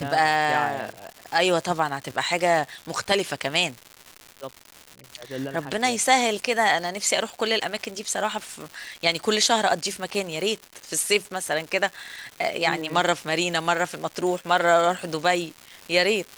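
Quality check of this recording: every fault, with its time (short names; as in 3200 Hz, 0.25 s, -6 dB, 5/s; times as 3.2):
crackle 290/s -31 dBFS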